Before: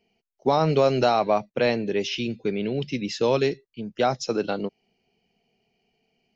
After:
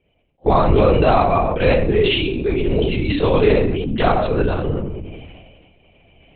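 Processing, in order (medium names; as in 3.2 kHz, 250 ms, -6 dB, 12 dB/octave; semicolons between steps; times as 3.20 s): recorder AGC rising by 9.1 dB/s; high-pass 150 Hz; reverberation RT60 0.65 s, pre-delay 3 ms, DRR -2.5 dB; LPC vocoder at 8 kHz whisper; decay stretcher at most 33 dB/s; trim +1 dB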